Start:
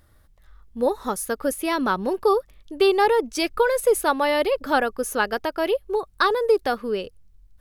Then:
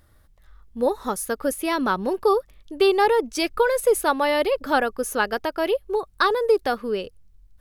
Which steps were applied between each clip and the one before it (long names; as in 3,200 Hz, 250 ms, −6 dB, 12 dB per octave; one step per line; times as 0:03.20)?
no processing that can be heard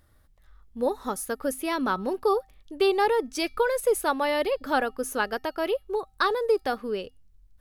tuned comb filter 260 Hz, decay 0.3 s, harmonics odd, mix 40%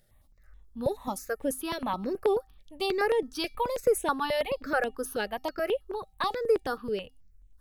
step-sequenced phaser 9.3 Hz 290–4,700 Hz